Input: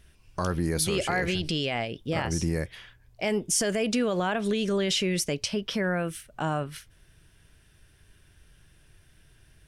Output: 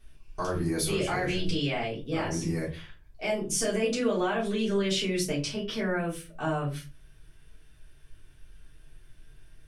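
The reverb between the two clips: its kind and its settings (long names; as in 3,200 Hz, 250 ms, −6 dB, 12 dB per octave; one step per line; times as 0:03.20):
rectangular room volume 120 cubic metres, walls furnished, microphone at 3.5 metres
level −10 dB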